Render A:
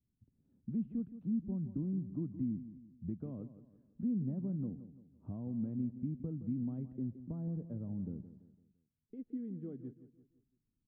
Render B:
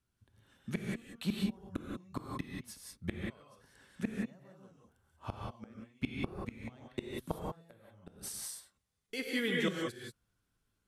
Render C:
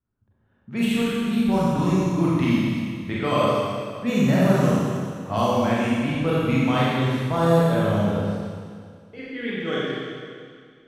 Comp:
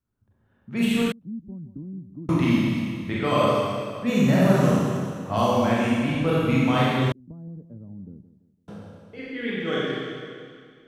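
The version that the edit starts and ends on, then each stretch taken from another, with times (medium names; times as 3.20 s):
C
1.12–2.29 s: from A
7.12–8.68 s: from A
not used: B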